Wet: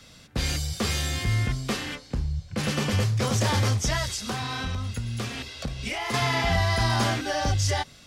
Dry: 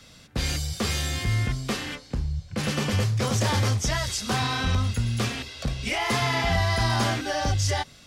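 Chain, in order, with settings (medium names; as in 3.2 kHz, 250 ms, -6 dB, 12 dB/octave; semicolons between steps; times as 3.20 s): 4.05–6.14 s: compression 4:1, threshold -28 dBFS, peak gain reduction 7.5 dB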